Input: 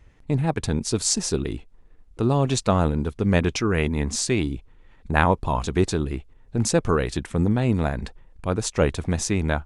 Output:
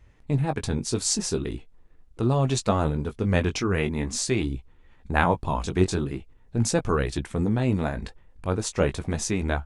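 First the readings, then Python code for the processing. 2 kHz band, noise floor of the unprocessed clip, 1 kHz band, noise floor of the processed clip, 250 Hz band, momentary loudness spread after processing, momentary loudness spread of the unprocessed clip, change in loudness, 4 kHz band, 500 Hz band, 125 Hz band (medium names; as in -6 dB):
-2.0 dB, -52 dBFS, -2.5 dB, -54 dBFS, -2.5 dB, 9 LU, 9 LU, -2.5 dB, -2.5 dB, -2.5 dB, -2.0 dB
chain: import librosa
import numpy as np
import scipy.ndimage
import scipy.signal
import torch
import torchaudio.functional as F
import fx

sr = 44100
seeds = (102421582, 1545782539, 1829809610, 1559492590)

y = fx.chorus_voices(x, sr, voices=2, hz=0.42, base_ms=18, depth_ms=3.8, mix_pct=30)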